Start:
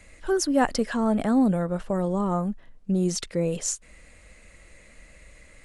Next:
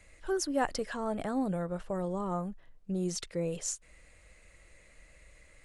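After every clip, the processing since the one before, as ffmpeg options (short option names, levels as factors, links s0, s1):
-af "equalizer=f=230:w=3.7:g=-8.5,volume=0.447"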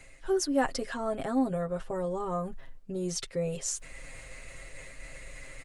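-af "aecho=1:1:7.5:0.79,areverse,acompressor=mode=upward:threshold=0.0251:ratio=2.5,areverse"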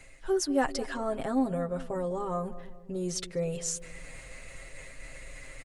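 -filter_complex "[0:a]asplit=2[s0][s1];[s1]adelay=201,lowpass=f=860:p=1,volume=0.2,asplit=2[s2][s3];[s3]adelay=201,lowpass=f=860:p=1,volume=0.55,asplit=2[s4][s5];[s5]adelay=201,lowpass=f=860:p=1,volume=0.55,asplit=2[s6][s7];[s7]adelay=201,lowpass=f=860:p=1,volume=0.55,asplit=2[s8][s9];[s9]adelay=201,lowpass=f=860:p=1,volume=0.55,asplit=2[s10][s11];[s11]adelay=201,lowpass=f=860:p=1,volume=0.55[s12];[s0][s2][s4][s6][s8][s10][s12]amix=inputs=7:normalize=0"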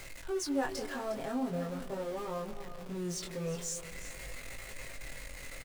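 -af "aeval=exprs='val(0)+0.5*0.0224*sgn(val(0))':c=same,aecho=1:1:358:0.224,flanger=delay=19:depth=5.4:speed=0.43,volume=0.562"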